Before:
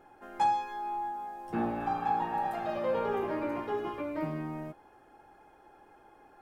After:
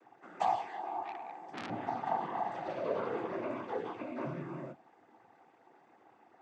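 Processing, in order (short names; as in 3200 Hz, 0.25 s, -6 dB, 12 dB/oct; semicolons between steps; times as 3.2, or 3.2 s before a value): noise vocoder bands 16; 1.04–1.7 core saturation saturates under 2800 Hz; gain -4 dB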